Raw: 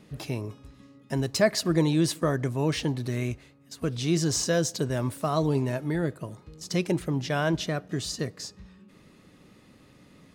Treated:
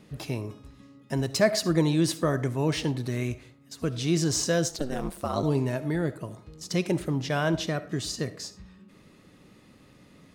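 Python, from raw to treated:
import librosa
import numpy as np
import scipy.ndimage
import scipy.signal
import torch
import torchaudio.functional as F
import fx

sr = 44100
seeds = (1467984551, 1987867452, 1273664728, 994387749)

y = fx.rev_freeverb(x, sr, rt60_s=0.46, hf_ratio=0.5, predelay_ms=25, drr_db=14.5)
y = fx.ring_mod(y, sr, carrier_hz=fx.line((4.68, 180.0), (5.42, 47.0)), at=(4.68, 5.42), fade=0.02)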